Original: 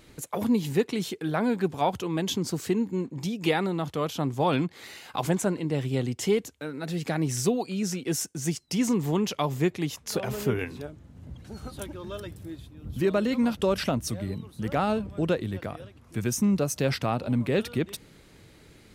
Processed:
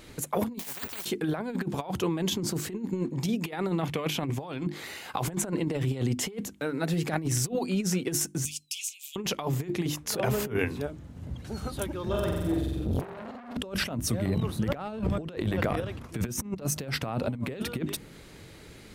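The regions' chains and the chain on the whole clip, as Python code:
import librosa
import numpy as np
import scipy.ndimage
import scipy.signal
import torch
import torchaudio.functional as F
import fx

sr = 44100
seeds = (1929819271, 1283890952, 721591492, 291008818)

y = fx.chain(x, sr, fx.peak_eq(hz=400.0, db=4.0, octaves=0.39),
    fx.resample_bad(factor=2, down='filtered', up='zero_stuff'),
    fx.spectral_comp(ratio=10.0), at=(0.59, 1.05))
y = fx.chain(y, sr, fx.peak_eq(hz=2300.0, db=11.0, octaves=0.68),
    fx.notch(hz=1300.0, q=13.0), at=(3.81, 4.38))
y = fx.chain(y, sr, fx.cheby_ripple_highpass(hz=2400.0, ripple_db=3),
    fx.band_squash(depth_pct=40), at=(8.45, 9.16))
y = fx.chain(y, sr, fx.low_shelf(hz=460.0, db=7.0),
    fx.room_flutter(wall_m=7.8, rt60_s=1.1),
    fx.transformer_sat(knee_hz=1300.0), at=(12.06, 13.57))
y = fx.chain(y, sr, fx.peak_eq(hz=11000.0, db=-4.0, octaves=1.7),
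    fx.transient(attack_db=3, sustain_db=11), at=(14.25, 16.63))
y = fx.hum_notches(y, sr, base_hz=50, count=7)
y = fx.over_compress(y, sr, threshold_db=-30.0, ratio=-0.5)
y = fx.dynamic_eq(y, sr, hz=4800.0, q=0.73, threshold_db=-46.0, ratio=4.0, max_db=-4)
y = y * 10.0 ** (1.5 / 20.0)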